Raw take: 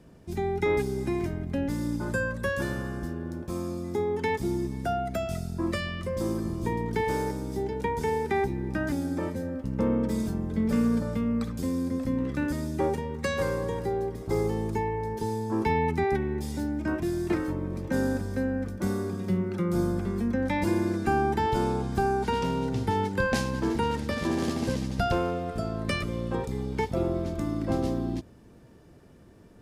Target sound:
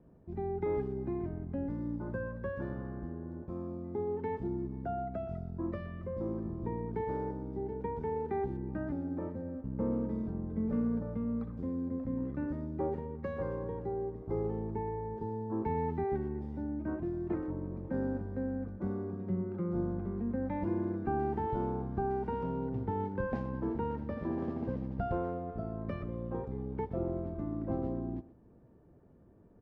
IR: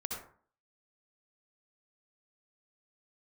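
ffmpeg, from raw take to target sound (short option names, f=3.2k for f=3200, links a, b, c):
-filter_complex "[0:a]lowpass=1k,asplit=2[a][b];[b]adelay=120,highpass=300,lowpass=3.4k,asoftclip=type=hard:threshold=-24dB,volume=-16dB[c];[a][c]amix=inputs=2:normalize=0,volume=-7dB"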